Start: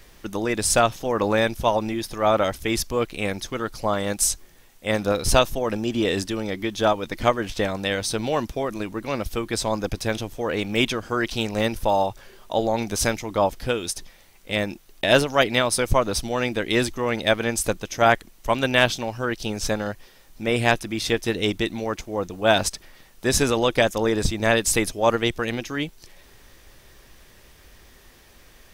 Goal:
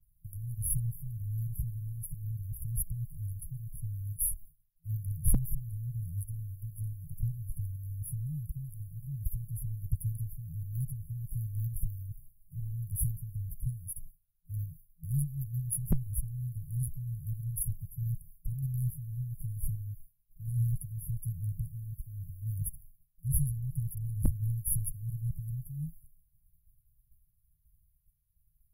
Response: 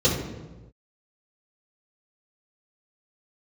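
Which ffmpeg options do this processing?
-af "agate=range=-33dB:threshold=-38dB:ratio=3:detection=peak,afftfilt=real='re*(1-between(b*sr/4096,170,10000))':imag='im*(1-between(b*sr/4096,170,10000))':win_size=4096:overlap=0.75,aeval=exprs='0.211*(abs(mod(val(0)/0.211+3,4)-2)-1)':channel_layout=same"

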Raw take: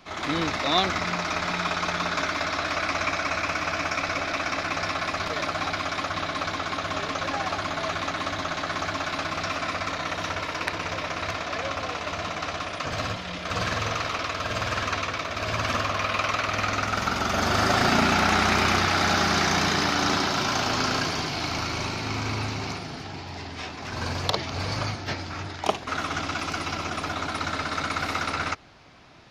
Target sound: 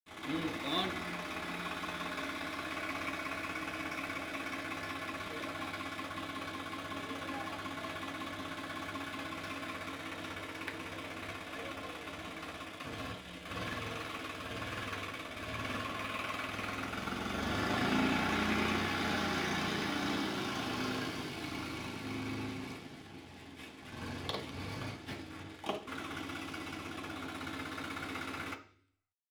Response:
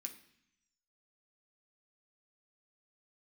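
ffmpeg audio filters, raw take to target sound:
-filter_complex "[0:a]lowpass=frequency=2700:poles=1,aeval=exprs='sgn(val(0))*max(abs(val(0))-0.00794,0)':channel_layout=same[link_01];[1:a]atrim=start_sample=2205,asetrate=61740,aresample=44100[link_02];[link_01][link_02]afir=irnorm=-1:irlink=0"

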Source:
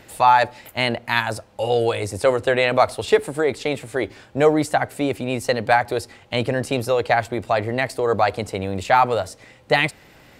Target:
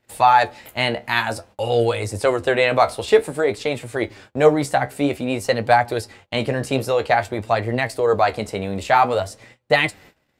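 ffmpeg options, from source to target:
ffmpeg -i in.wav -af "flanger=delay=8.2:depth=6.8:regen=53:speed=0.52:shape=sinusoidal,agate=range=-24dB:threshold=-49dB:ratio=16:detection=peak,volume=4.5dB" out.wav

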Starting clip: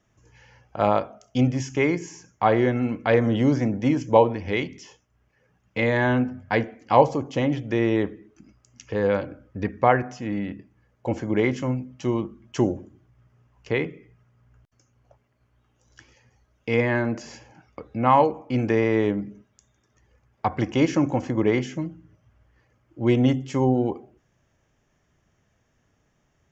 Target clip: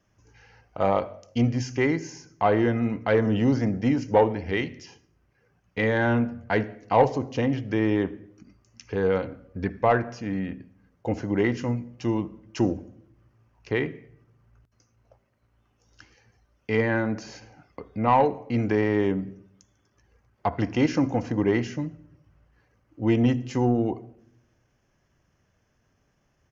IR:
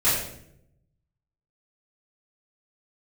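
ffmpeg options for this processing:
-filter_complex "[0:a]acontrast=52,asetrate=41625,aresample=44100,atempo=1.05946,asplit=2[link_01][link_02];[1:a]atrim=start_sample=2205,adelay=53[link_03];[link_02][link_03]afir=irnorm=-1:irlink=0,volume=-36dB[link_04];[link_01][link_04]amix=inputs=2:normalize=0,volume=-7dB"

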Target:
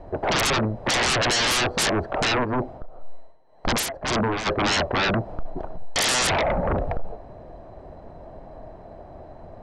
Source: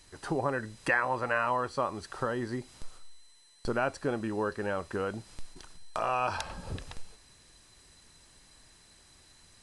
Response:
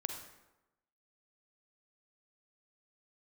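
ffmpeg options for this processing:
-filter_complex "[0:a]lowpass=frequency=660:width_type=q:width=5.4,aeval=exprs='0.0944*sin(PI/2*4.47*val(0)/0.0944)':channel_layout=same,asplit=3[link_01][link_02][link_03];[link_01]afade=type=out:start_time=2.43:duration=0.02[link_04];[link_02]tremolo=f=1.9:d=0.71,afade=type=in:start_time=2.43:duration=0.02,afade=type=out:start_time=4.45:duration=0.02[link_05];[link_03]afade=type=in:start_time=4.45:duration=0.02[link_06];[link_04][link_05][link_06]amix=inputs=3:normalize=0,volume=2dB"

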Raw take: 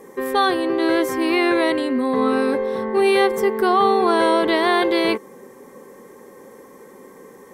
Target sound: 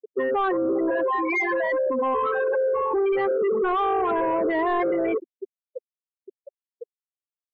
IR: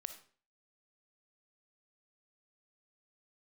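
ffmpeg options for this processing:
-filter_complex "[0:a]asplit=4[link_01][link_02][link_03][link_04];[link_02]adelay=132,afreqshift=-100,volume=-20.5dB[link_05];[link_03]adelay=264,afreqshift=-200,volume=-28.2dB[link_06];[link_04]adelay=396,afreqshift=-300,volume=-36dB[link_07];[link_01][link_05][link_06][link_07]amix=inputs=4:normalize=0,asoftclip=type=tanh:threshold=-14dB,asettb=1/sr,asplit=3[link_08][link_09][link_10];[link_08]atrim=end=0.904[link_11];[link_09]atrim=start=0.9:end=2.94,asetpts=PTS-STARTPTS,afade=type=in:duration=0.004:curve=qsin,afade=type=out:start_time=2.036:duration=0.004:curve=qsin,highpass=550,lowpass=6800[link_12];[link_10]atrim=start=2.936[link_13];[link_11][link_12]acrossfade=duration=0.004:curve1=hsin:curve2=qsin[link_14];[link_14][link_13]acrossfade=duration=0.004:curve1=qsin:curve2=hsin,acontrast=67,asplit=2[link_15][link_16];[link_16]highpass=frequency=720:poles=1,volume=24dB,asoftclip=type=tanh:threshold=-6dB[link_17];[link_15][link_17]amix=inputs=2:normalize=0,lowpass=frequency=2300:poles=1,volume=-6dB,afftfilt=real='re*gte(hypot(re,im),0.794)':imag='im*gte(hypot(re,im),0.794)':win_size=1024:overlap=0.75,acontrast=81,alimiter=limit=-10dB:level=0:latency=1:release=43,afftdn=noise_reduction=34:noise_floor=-37,volume=-8.5dB"

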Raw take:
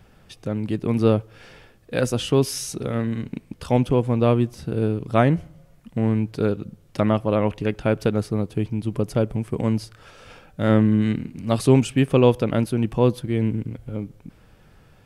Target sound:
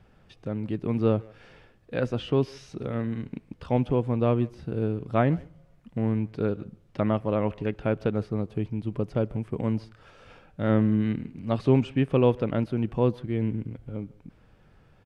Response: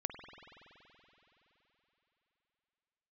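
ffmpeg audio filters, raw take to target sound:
-filter_complex "[0:a]aemphasis=mode=reproduction:type=50kf,asplit=2[link_01][link_02];[link_02]adelay=150,highpass=300,lowpass=3400,asoftclip=type=hard:threshold=-12.5dB,volume=-22dB[link_03];[link_01][link_03]amix=inputs=2:normalize=0,acrossover=split=4600[link_04][link_05];[link_05]acompressor=threshold=-60dB:ratio=4:attack=1:release=60[link_06];[link_04][link_06]amix=inputs=2:normalize=0,volume=-5dB"

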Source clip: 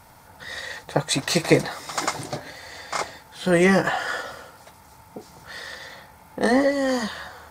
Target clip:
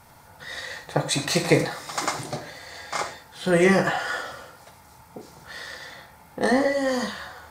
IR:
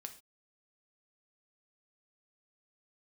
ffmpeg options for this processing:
-filter_complex "[1:a]atrim=start_sample=2205,atrim=end_sample=4410,asetrate=35280,aresample=44100[link_01];[0:a][link_01]afir=irnorm=-1:irlink=0,volume=2.5dB"

